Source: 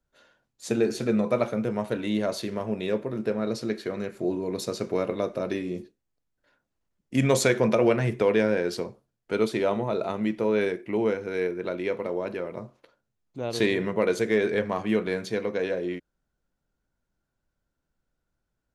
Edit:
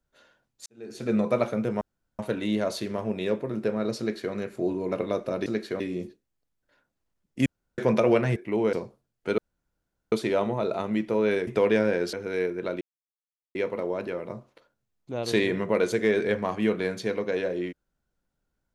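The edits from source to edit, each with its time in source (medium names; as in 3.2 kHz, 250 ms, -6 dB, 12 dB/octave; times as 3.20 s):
0.66–1.15 s: fade in quadratic
1.81 s: insert room tone 0.38 s
3.61–3.95 s: copy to 5.55 s
4.54–5.01 s: delete
7.21–7.53 s: room tone
8.11–8.77 s: swap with 10.77–11.14 s
9.42 s: insert room tone 0.74 s
11.82 s: insert silence 0.74 s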